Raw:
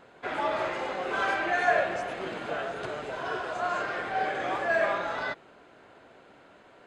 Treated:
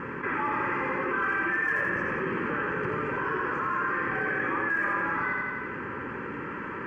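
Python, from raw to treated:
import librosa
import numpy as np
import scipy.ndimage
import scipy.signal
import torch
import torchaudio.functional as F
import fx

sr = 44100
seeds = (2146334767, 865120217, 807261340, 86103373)

p1 = scipy.signal.sosfilt(scipy.signal.butter(2, 2300.0, 'lowpass', fs=sr, output='sos'), x)
p2 = np.clip(p1, -10.0 ** (-21.0 / 20.0), 10.0 ** (-21.0 / 20.0))
p3 = p1 + (p2 * librosa.db_to_amplitude(-5.0))
p4 = fx.fixed_phaser(p3, sr, hz=1600.0, stages=4)
p5 = fx.notch_comb(p4, sr, f0_hz=720.0)
p6 = p5 + fx.echo_feedback(p5, sr, ms=86, feedback_pct=48, wet_db=-4.5, dry=0)
p7 = fx.env_flatten(p6, sr, amount_pct=70)
y = p7 * librosa.db_to_amplitude(-3.0)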